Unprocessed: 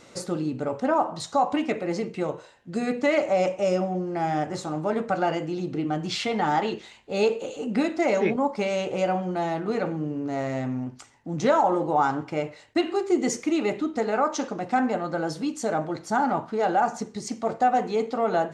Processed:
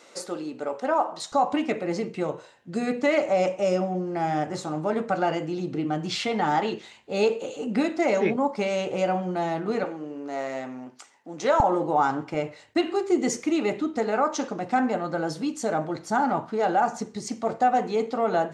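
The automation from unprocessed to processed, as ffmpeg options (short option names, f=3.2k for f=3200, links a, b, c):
-af "asetnsamples=n=441:p=0,asendcmd='1.32 highpass f 92;9.84 highpass f 390;11.6 highpass f 130;12.34 highpass f 59',highpass=380"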